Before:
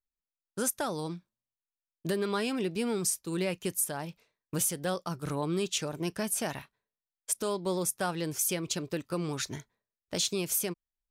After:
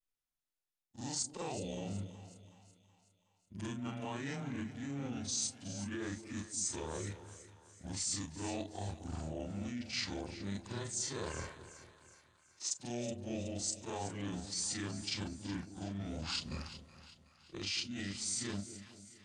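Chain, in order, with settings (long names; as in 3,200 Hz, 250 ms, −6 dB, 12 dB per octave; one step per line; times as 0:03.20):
every overlapping window played backwards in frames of 58 ms
reversed playback
downward compressor, threshold −40 dBFS, peak gain reduction 11.5 dB
reversed playback
wrong playback speed 78 rpm record played at 45 rpm
on a send: echo with a time of its own for lows and highs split 630 Hz, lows 223 ms, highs 372 ms, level −12.5 dB
on the sum: dynamic equaliser 4,100 Hz, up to +4 dB, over −54 dBFS, Q 1.2
formants moved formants +4 semitones
level +2 dB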